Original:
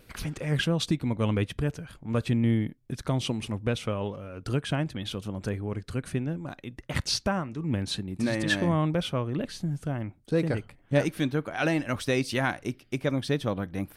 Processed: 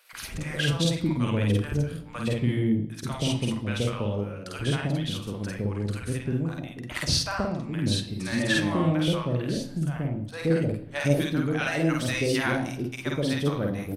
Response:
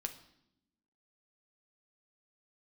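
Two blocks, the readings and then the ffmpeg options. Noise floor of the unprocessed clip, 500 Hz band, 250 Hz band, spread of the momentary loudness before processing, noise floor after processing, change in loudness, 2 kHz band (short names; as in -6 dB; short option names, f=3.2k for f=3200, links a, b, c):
-59 dBFS, +1.0 dB, +2.0 dB, 8 LU, -40 dBFS, +2.0 dB, +2.5 dB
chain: -filter_complex "[0:a]acrossover=split=720[a][b];[a]adelay=130[c];[c][b]amix=inputs=2:normalize=0,asplit=2[d][e];[1:a]atrim=start_sample=2205,highshelf=f=5.2k:g=5.5,adelay=49[f];[e][f]afir=irnorm=-1:irlink=0,volume=-0.5dB[g];[d][g]amix=inputs=2:normalize=0"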